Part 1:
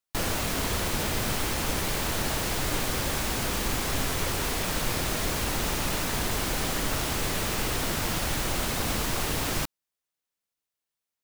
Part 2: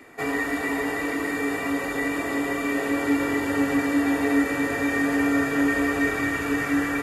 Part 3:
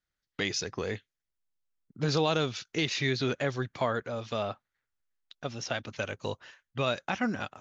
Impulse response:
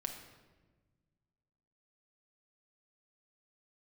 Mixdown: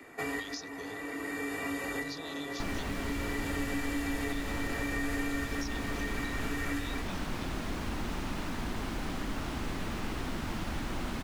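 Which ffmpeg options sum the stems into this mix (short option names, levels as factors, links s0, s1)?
-filter_complex "[0:a]lowpass=f=1100:p=1,equalizer=f=125:t=o:w=1:g=-5,equalizer=f=250:t=o:w=1:g=5,equalizer=f=500:t=o:w=1:g=-7,adelay=2450,volume=0.841[s0];[1:a]volume=0.708[s1];[2:a]acompressor=threshold=0.0355:ratio=6,highshelf=f=2700:t=q:w=1.5:g=11,volume=0.168,asplit=3[s2][s3][s4];[s2]atrim=end=2.83,asetpts=PTS-STARTPTS,afade=t=out:st=2.826:d=0.004:c=hsin[s5];[s3]atrim=start=2.83:end=4.29,asetpts=PTS-STARTPTS,volume=0[s6];[s4]atrim=start=4.29,asetpts=PTS-STARTPTS,afade=t=in:d=0.004:c=hsin[s7];[s5][s6][s7]concat=n=3:v=0:a=1,asplit=2[s8][s9];[s9]apad=whole_len=309868[s10];[s1][s10]sidechaincompress=threshold=0.00398:ratio=8:attack=22:release=1020[s11];[s0][s11][s8]amix=inputs=3:normalize=0,acrossover=split=110|2200[s12][s13][s14];[s12]acompressor=threshold=0.02:ratio=4[s15];[s13]acompressor=threshold=0.0178:ratio=4[s16];[s14]acompressor=threshold=0.01:ratio=4[s17];[s15][s16][s17]amix=inputs=3:normalize=0"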